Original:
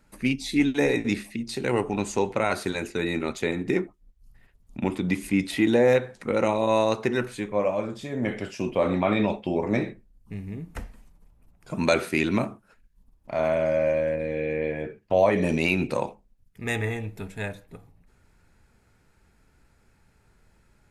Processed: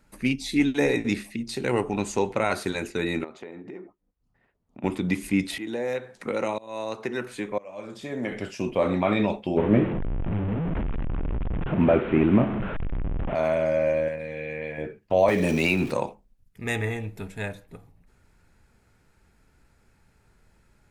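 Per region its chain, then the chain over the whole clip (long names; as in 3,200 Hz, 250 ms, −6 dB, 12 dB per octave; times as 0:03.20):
0:03.24–0:04.84: downward compressor 16 to 1, threshold −32 dBFS + resonant band-pass 620 Hz, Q 0.59
0:05.58–0:08.32: shaped tremolo saw up 1 Hz, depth 95% + low-shelf EQ 140 Hz −10.5 dB + multiband upward and downward compressor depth 70%
0:09.57–0:13.35: linear delta modulator 16 kbit/s, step −26.5 dBFS + tilt shelving filter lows +7 dB, about 930 Hz
0:14.08–0:14.78: high-pass filter 130 Hz 6 dB per octave + parametric band 350 Hz −11 dB 1.1 octaves
0:15.28–0:15.91: converter with a step at zero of −37 dBFS + multiband upward and downward compressor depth 40%
whole clip: no processing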